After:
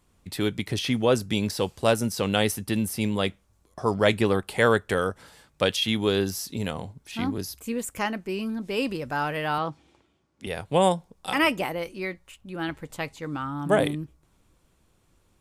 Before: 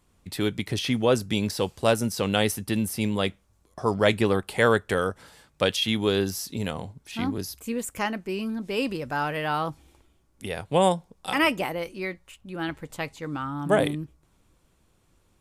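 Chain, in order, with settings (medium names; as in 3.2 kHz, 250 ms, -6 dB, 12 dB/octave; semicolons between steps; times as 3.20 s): 9.58–10.47 s: band-pass 120–5500 Hz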